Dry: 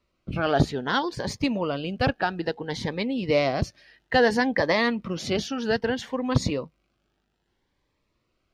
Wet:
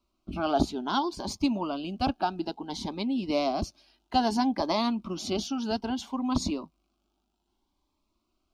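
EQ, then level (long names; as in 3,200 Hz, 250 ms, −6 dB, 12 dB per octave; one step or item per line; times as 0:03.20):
phaser with its sweep stopped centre 490 Hz, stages 6
0.0 dB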